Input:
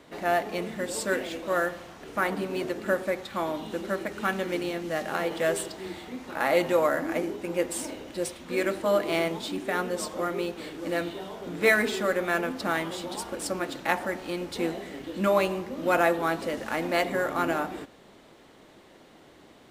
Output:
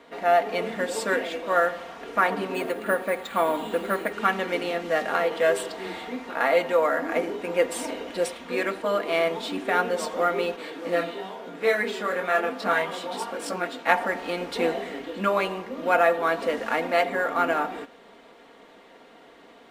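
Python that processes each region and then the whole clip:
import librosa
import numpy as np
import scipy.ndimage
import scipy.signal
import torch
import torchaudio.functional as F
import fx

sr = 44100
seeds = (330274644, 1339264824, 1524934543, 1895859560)

y = fx.chain(x, sr, fx.lowpass(hz=8300.0, slope=12),
    fx.resample_bad(factor=4, down='filtered', up='hold'), at=(2.54, 4.13))
y = fx.chain(y, sr, fx.highpass(hz=100.0, slope=12),
    fx.detune_double(cents=13), at=(10.56, 13.87))
y = fx.rider(y, sr, range_db=3, speed_s=0.5)
y = fx.bass_treble(y, sr, bass_db=-12, treble_db=-9)
y = y + 0.51 * np.pad(y, (int(4.3 * sr / 1000.0), 0))[:len(y)]
y = F.gain(torch.from_numpy(y), 4.5).numpy()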